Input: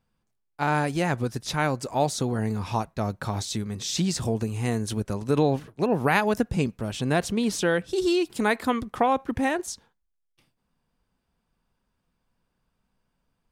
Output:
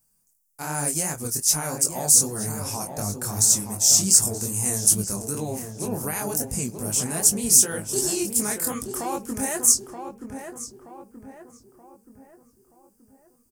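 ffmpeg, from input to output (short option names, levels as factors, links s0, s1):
-filter_complex "[0:a]alimiter=limit=0.126:level=0:latency=1:release=38,flanger=delay=18.5:depth=7.6:speed=2.6,aexciter=amount=9.2:drive=9.7:freq=5700,asplit=2[s0][s1];[s1]adelay=20,volume=0.2[s2];[s0][s2]amix=inputs=2:normalize=0,asplit=2[s3][s4];[s4]adelay=927,lowpass=f=1700:p=1,volume=0.473,asplit=2[s5][s6];[s6]adelay=927,lowpass=f=1700:p=1,volume=0.47,asplit=2[s7][s8];[s8]adelay=927,lowpass=f=1700:p=1,volume=0.47,asplit=2[s9][s10];[s10]adelay=927,lowpass=f=1700:p=1,volume=0.47,asplit=2[s11][s12];[s12]adelay=927,lowpass=f=1700:p=1,volume=0.47,asplit=2[s13][s14];[s14]adelay=927,lowpass=f=1700:p=1,volume=0.47[s15];[s5][s7][s9][s11][s13][s15]amix=inputs=6:normalize=0[s16];[s3][s16]amix=inputs=2:normalize=0,volume=0.891"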